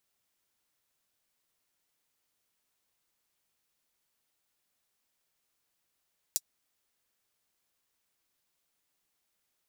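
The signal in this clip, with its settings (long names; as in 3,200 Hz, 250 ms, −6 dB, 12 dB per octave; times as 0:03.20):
closed synth hi-hat, high-pass 5,700 Hz, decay 0.05 s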